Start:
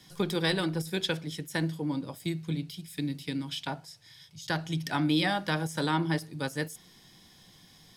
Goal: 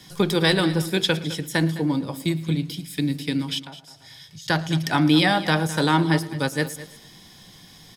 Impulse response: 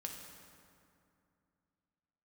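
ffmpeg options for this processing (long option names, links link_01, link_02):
-filter_complex "[0:a]asplit=2[link_01][link_02];[link_02]aecho=0:1:112|224|336|448:0.0891|0.0499|0.0279|0.0157[link_03];[link_01][link_03]amix=inputs=2:normalize=0,asplit=3[link_04][link_05][link_06];[link_04]afade=type=out:start_time=3.58:duration=0.02[link_07];[link_05]acompressor=threshold=-47dB:ratio=10,afade=type=in:start_time=3.58:duration=0.02,afade=type=out:start_time=4.45:duration=0.02[link_08];[link_06]afade=type=in:start_time=4.45:duration=0.02[link_09];[link_07][link_08][link_09]amix=inputs=3:normalize=0,asplit=2[link_10][link_11];[link_11]aecho=0:1:209:0.158[link_12];[link_10][link_12]amix=inputs=2:normalize=0,volume=8.5dB"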